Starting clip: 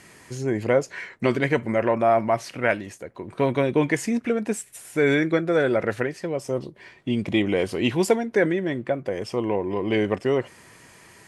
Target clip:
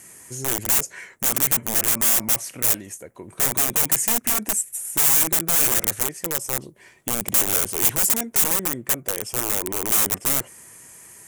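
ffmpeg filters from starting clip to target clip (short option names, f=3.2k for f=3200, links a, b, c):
-af "aeval=exprs='(mod(9.44*val(0)+1,2)-1)/9.44':c=same,aexciter=amount=5.6:drive=6.4:freq=6.3k,volume=-3.5dB"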